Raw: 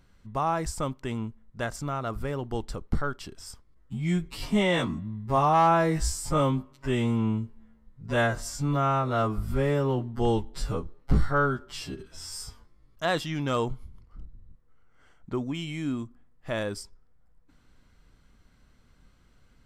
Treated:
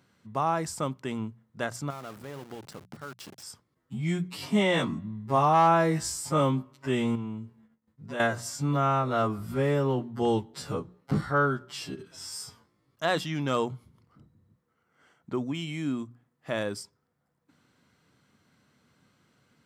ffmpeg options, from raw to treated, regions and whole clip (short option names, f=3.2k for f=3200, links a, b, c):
-filter_complex "[0:a]asettb=1/sr,asplit=3[a][b][c];[a]atrim=end=1.904[d];[b]atrim=start=1.9:end=3.43,asetpts=PTS-STARTPTS,afade=t=in:d=0.004:c=qsin,afade=t=out:st=1.526:d=0.004:c=qsin,bandreject=f=50:t=h:w=6,bandreject=f=100:t=h:w=6,bandreject=f=150:t=h:w=6,acompressor=threshold=-38dB:ratio=3:attack=3.2:release=140:knee=1:detection=peak,aeval=exprs='val(0)*gte(abs(val(0)),0.00668)':c=same[e];[c]atrim=start=3.426[f];[d][e]acrossfade=d=0.004:c1=hsin:c2=qsin[g];[g][f]acrossfade=d=0.004:c1=qsin:c2=hsin,asettb=1/sr,asplit=3[h][i][j];[h]atrim=end=7.154[k];[i]atrim=start=7.15:end=8.2,asetpts=PTS-STARTPTS,afade=t=in:d=0.004:c=qsin,afade=t=out:st=1.046:d=0.004:c=qsin,agate=range=-33dB:threshold=-49dB:ratio=3:release=100:detection=peak,acompressor=threshold=-37dB:ratio=2:attack=3.2:release=140:knee=1:detection=peak[l];[j]atrim=start=8.196[m];[k][l]acrossfade=d=0.004:c1=hsin:c2=qsin[n];[n][m]acrossfade=d=0.004:c1=qsin:c2=hsin,highpass=f=110:w=0.5412,highpass=f=110:w=1.3066,bandreject=f=60:t=h:w=6,bandreject=f=120:t=h:w=6,bandreject=f=180:t=h:w=6"